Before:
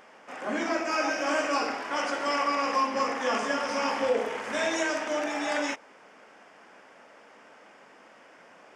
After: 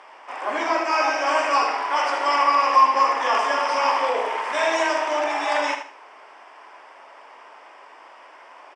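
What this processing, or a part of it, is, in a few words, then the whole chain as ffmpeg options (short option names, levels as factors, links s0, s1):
phone speaker on a table: -af "highpass=f=380:w=0.5412,highpass=f=380:w=1.3066,equalizer=f=490:t=q:w=4:g=-8,equalizer=f=990:t=q:w=4:g=8,equalizer=f=1500:t=q:w=4:g=-4,equalizer=f=4000:t=q:w=4:g=-3,equalizer=f=6700:t=q:w=4:g=-10,lowpass=f=8800:w=0.5412,lowpass=f=8800:w=1.3066,aecho=1:1:77|154|231:0.398|0.111|0.0312,volume=2.11"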